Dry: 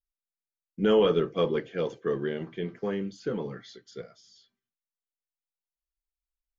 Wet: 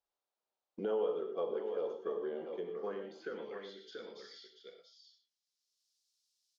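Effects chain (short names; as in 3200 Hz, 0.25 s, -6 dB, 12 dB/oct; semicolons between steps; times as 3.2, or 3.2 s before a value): graphic EQ 125/500/1000/2000/4000 Hz -9/+4/-8/-9/+4 dB; non-linear reverb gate 0.14 s flat, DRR 5.5 dB; band-pass sweep 900 Hz -> 5200 Hz, 2.64–4.47; on a send: echo 0.683 s -12 dB; on the sum: dynamic EQ 2900 Hz, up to -4 dB, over -60 dBFS, Q 1.6; three-band squash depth 70%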